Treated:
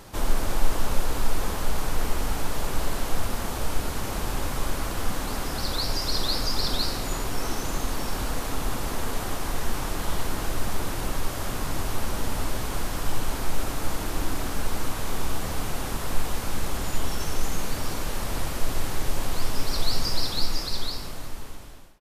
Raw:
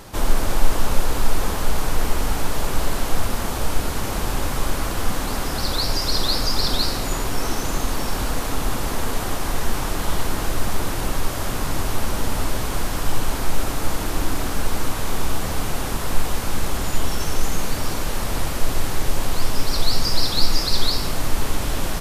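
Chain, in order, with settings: ending faded out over 2.01 s; speakerphone echo 0.35 s, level -18 dB; gain -5 dB

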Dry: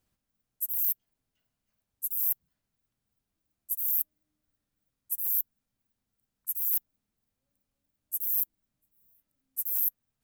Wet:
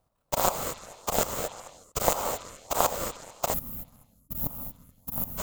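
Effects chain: FFT order left unsorted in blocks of 16 samples; delay with a stepping band-pass 0.139 s, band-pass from 720 Hz, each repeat 0.7 oct, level -4 dB; non-linear reverb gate 0.48 s rising, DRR 5.5 dB; granular stretch 0.53×, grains 22 ms; in parallel at -5 dB: decimation with a swept rate 37×, swing 100% 1.7 Hz; on the sum: band shelf 790 Hz +13 dB; spectral gain 3.54–5.38, 280–10000 Hz -21 dB; low shelf 110 Hz +4.5 dB

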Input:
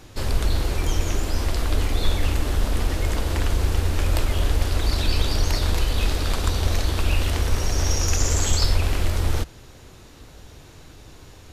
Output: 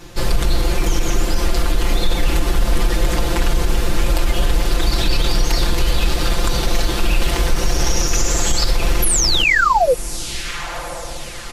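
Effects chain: painted sound fall, 9.02–9.94, 460–12000 Hz -21 dBFS; comb 5.8 ms, depth 98%; on a send: diffused feedback echo 1.062 s, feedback 52%, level -15 dB; on the sum: limiter -11 dBFS, peak gain reduction 8 dB; gain +4.5 dB

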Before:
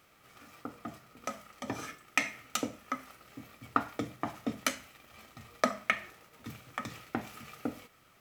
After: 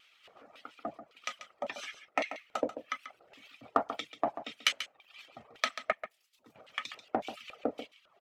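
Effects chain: 5.92–6.56 pre-emphasis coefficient 0.8; reverb removal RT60 0.79 s; LFO band-pass square 1.8 Hz 620–3100 Hz; in parallel at -6 dB: soft clip -37 dBFS, distortion -6 dB; on the sum: wow and flutter 29 cents; harmonic-percussive split percussive +9 dB; on a send: echo 0.138 s -11.5 dB

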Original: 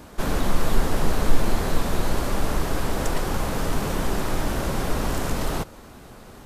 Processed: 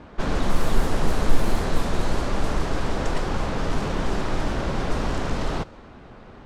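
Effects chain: median filter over 3 samples; low-pass opened by the level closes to 2900 Hz, open at -11.5 dBFS

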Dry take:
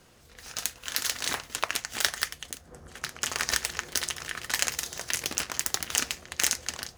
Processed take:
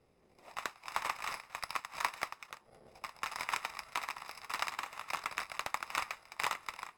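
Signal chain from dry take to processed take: FFT order left unsorted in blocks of 64 samples; auto-wah 680–1600 Hz, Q 2.6, up, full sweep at -35.5 dBFS; frequency shift -400 Hz; gain +6 dB

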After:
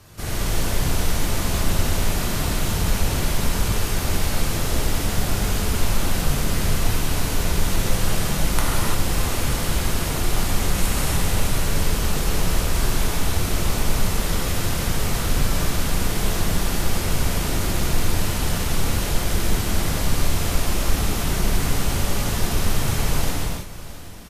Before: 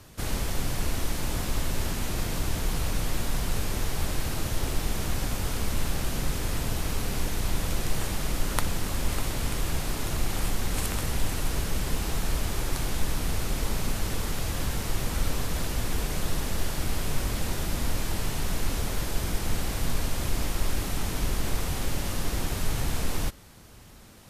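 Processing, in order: on a send: echo 0.666 s -16 dB; on the sum: non-linear reverb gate 0.37 s flat, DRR -6.5 dB

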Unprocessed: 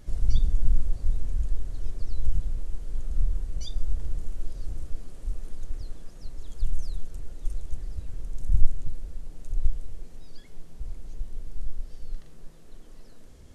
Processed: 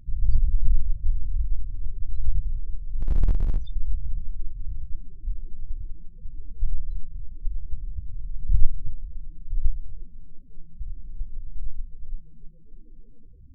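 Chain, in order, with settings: low-pass opened by the level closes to 1200 Hz, open at -12.5 dBFS; loudest bins only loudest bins 8; 3.01–3.58 power-law curve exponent 0.5; gain +1.5 dB

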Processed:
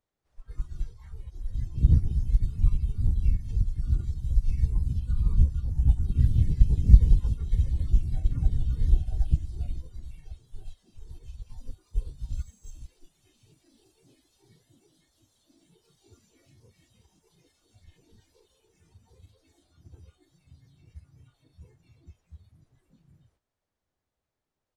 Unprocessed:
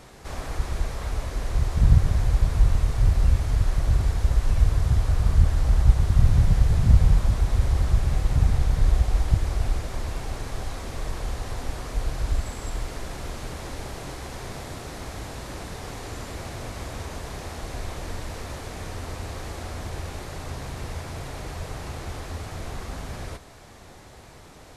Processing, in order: spectral noise reduction 24 dB; harmoniser -4 st -8 dB, -3 st -2 dB, +12 st -13 dB; upward expander 1.5:1, over -37 dBFS; gain -2 dB

